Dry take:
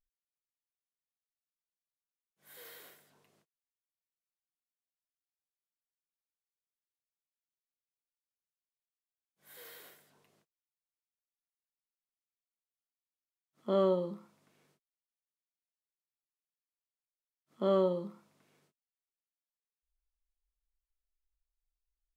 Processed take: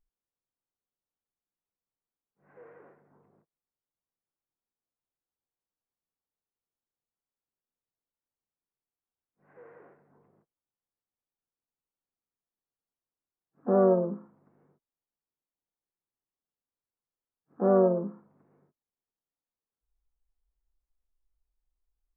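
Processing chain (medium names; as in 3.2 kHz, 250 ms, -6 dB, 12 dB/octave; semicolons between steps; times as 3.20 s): Gaussian low-pass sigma 7.2 samples; harmony voices +4 st -11 dB; band-stop 620 Hz, Q 12; trim +7.5 dB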